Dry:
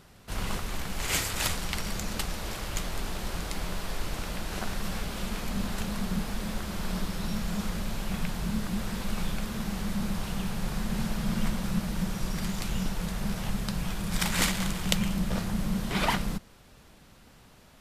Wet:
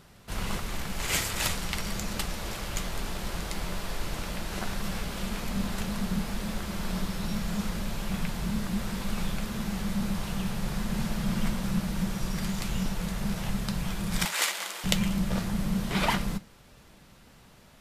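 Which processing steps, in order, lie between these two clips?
14.25–14.84 s: Bessel high-pass 580 Hz, order 6; on a send: reverberation, pre-delay 3 ms, DRR 10 dB

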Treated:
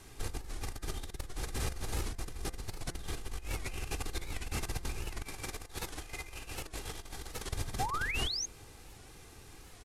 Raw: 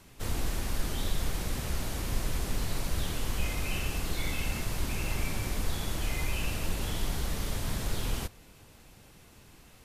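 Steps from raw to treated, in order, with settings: CVSD coder 64 kbps; compressor with a negative ratio -34 dBFS, ratio -0.5; 5.22–7.52 s: bass shelf 240 Hz -7.5 dB; 7.79–8.46 s: painted sound rise 710–6700 Hz -32 dBFS; peaking EQ 3 kHz -3 dB 0.37 oct; comb 2.5 ms, depth 44%; de-hum 172.9 Hz, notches 12; warped record 78 rpm, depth 160 cents; trim -4 dB

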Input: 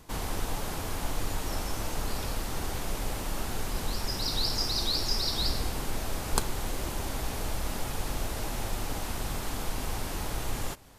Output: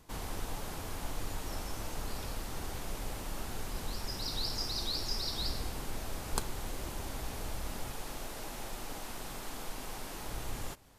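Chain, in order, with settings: 7.92–10.26 s: peaking EQ 64 Hz -11.5 dB 2 oct; trim -6.5 dB

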